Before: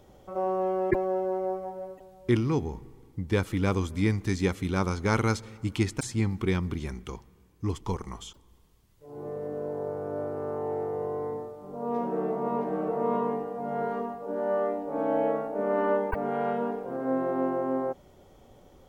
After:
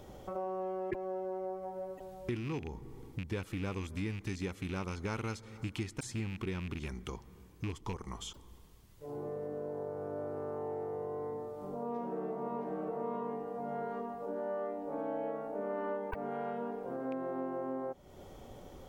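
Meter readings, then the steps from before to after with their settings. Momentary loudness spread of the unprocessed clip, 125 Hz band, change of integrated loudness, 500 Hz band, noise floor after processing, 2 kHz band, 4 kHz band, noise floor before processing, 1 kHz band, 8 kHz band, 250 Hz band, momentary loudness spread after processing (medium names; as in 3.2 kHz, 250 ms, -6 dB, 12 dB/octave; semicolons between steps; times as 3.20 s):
12 LU, -10.0 dB, -9.5 dB, -9.0 dB, -56 dBFS, -9.5 dB, -7.0 dB, -57 dBFS, -9.0 dB, -8.0 dB, -10.0 dB, 7 LU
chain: rattle on loud lows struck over -29 dBFS, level -26 dBFS; compression 3:1, threshold -44 dBFS, peak gain reduction 18.5 dB; trim +4 dB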